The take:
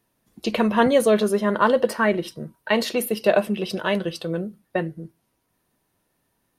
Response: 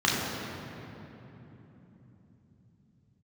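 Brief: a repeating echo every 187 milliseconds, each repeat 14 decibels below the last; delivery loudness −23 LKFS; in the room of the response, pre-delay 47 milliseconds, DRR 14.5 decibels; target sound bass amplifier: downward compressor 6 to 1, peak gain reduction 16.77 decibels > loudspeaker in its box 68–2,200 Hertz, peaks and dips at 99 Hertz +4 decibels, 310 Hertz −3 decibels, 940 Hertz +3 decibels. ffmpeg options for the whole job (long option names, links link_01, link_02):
-filter_complex "[0:a]aecho=1:1:187|374:0.2|0.0399,asplit=2[link_01][link_02];[1:a]atrim=start_sample=2205,adelay=47[link_03];[link_02][link_03]afir=irnorm=-1:irlink=0,volume=-30.5dB[link_04];[link_01][link_04]amix=inputs=2:normalize=0,acompressor=threshold=-30dB:ratio=6,highpass=frequency=68:width=0.5412,highpass=frequency=68:width=1.3066,equalizer=frequency=99:width_type=q:width=4:gain=4,equalizer=frequency=310:width_type=q:width=4:gain=-3,equalizer=frequency=940:width_type=q:width=4:gain=3,lowpass=frequency=2200:width=0.5412,lowpass=frequency=2200:width=1.3066,volume=11.5dB"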